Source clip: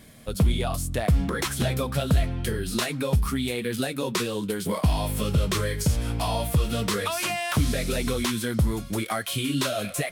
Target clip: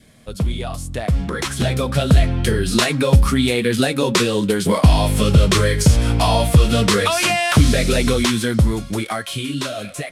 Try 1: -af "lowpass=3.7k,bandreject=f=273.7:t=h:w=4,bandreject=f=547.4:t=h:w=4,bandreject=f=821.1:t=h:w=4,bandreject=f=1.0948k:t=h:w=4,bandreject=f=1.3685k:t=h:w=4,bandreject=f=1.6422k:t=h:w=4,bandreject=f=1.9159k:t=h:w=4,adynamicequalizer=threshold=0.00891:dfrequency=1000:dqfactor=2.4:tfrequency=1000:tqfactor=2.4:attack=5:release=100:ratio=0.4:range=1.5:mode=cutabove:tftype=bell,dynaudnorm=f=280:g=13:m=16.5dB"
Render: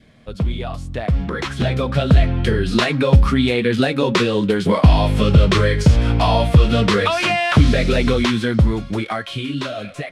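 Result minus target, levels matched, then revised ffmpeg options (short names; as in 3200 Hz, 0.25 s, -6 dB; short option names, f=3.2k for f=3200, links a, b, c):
8000 Hz band -12.0 dB
-af "lowpass=9.6k,bandreject=f=273.7:t=h:w=4,bandreject=f=547.4:t=h:w=4,bandreject=f=821.1:t=h:w=4,bandreject=f=1.0948k:t=h:w=4,bandreject=f=1.3685k:t=h:w=4,bandreject=f=1.6422k:t=h:w=4,bandreject=f=1.9159k:t=h:w=4,adynamicequalizer=threshold=0.00891:dfrequency=1000:dqfactor=2.4:tfrequency=1000:tqfactor=2.4:attack=5:release=100:ratio=0.4:range=1.5:mode=cutabove:tftype=bell,dynaudnorm=f=280:g=13:m=16.5dB"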